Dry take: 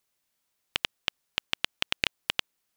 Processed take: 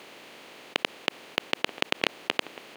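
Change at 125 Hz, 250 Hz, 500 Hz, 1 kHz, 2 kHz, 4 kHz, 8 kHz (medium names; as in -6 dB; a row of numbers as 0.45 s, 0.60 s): 0.0 dB, +9.5 dB, +11.5 dB, +6.5 dB, +2.0 dB, -1.0 dB, -1.0 dB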